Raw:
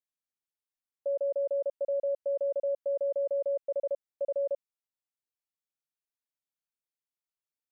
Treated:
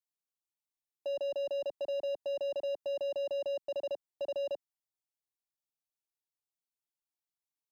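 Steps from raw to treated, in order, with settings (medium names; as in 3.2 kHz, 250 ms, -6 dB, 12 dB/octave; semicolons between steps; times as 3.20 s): waveshaping leveller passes 2; static phaser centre 330 Hz, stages 8; trim +1.5 dB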